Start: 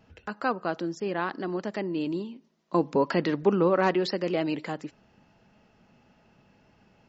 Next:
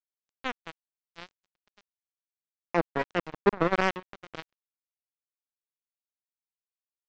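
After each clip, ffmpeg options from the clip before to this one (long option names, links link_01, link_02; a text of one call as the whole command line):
ffmpeg -i in.wav -af "lowpass=frequency=1400:poles=1,aresample=16000,acrusher=bits=2:mix=0:aa=0.5,aresample=44100" out.wav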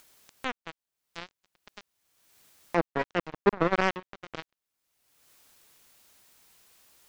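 ffmpeg -i in.wav -af "acompressor=mode=upward:threshold=-32dB:ratio=2.5" out.wav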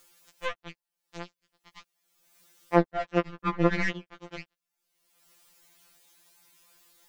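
ffmpeg -i in.wav -af "afftfilt=real='re*2.83*eq(mod(b,8),0)':imag='im*2.83*eq(mod(b,8),0)':win_size=2048:overlap=0.75,volume=1.5dB" out.wav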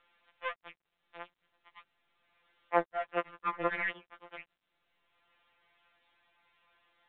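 ffmpeg -i in.wav -filter_complex "[0:a]acrossover=split=500 3100:gain=0.1 1 0.158[link_01][link_02][link_03];[link_01][link_02][link_03]amix=inputs=3:normalize=0,volume=-2dB" -ar 8000 -c:a pcm_mulaw out.wav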